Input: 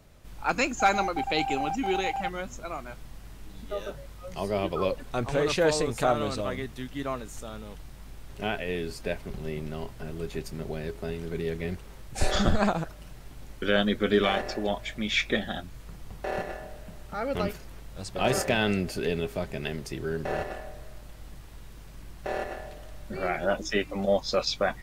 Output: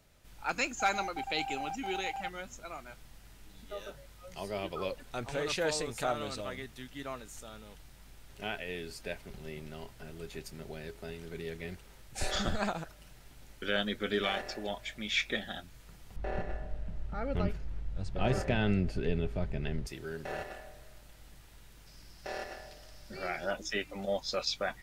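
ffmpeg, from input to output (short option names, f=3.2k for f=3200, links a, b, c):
-filter_complex "[0:a]asettb=1/sr,asplit=3[a][b][c];[a]atrim=end=16.164[d];[b]atrim=start=16.16:end=19.87,asetpts=PTS-STARTPTS,afade=t=in:d=0.004:c=qsin,afade=t=out:st=3.706:d=0.004:c=qsin,aemphasis=mode=reproduction:type=riaa[e];[c]atrim=start=19.866[f];[d][e]acrossfade=d=0.004:c1=hsin:c2=qsin[g];[g][f]acrossfade=d=0.004:c1=qsin:c2=hsin,asettb=1/sr,asplit=3[h][i][j];[h]atrim=end=21.864[k];[i]atrim=start=21.86:end=23.51,asetpts=PTS-STARTPTS,afade=t=in:d=0.004:c=qsin,afade=t=out:st=1.646:d=0.004:c=qsin,equalizer=f=5.1k:t=o:w=0.38:g=12[l];[j]atrim=start=23.506[m];[k][l]acrossfade=d=0.004:c1=hsin:c2=qsin[n];[n][m]acrossfade=d=0.004:c1=qsin:c2=hsin,tiltshelf=f=970:g=-3.5,bandreject=f=1.1k:w=13,volume=-7dB"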